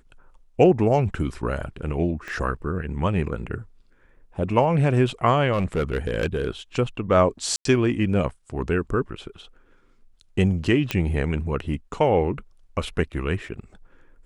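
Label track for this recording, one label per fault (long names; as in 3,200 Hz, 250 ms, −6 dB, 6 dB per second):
2.280000	2.280000	click −22 dBFS
5.520000	6.470000	clipping −18 dBFS
7.560000	7.650000	drop-out 93 ms
10.910000	10.910000	click −9 dBFS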